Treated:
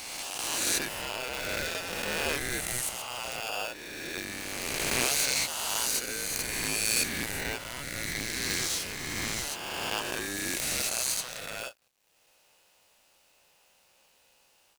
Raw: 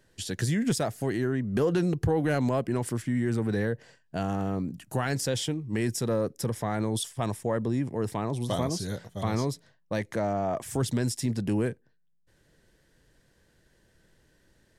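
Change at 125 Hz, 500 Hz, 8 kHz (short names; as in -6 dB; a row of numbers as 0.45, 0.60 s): -15.5, -9.0, +9.5 dB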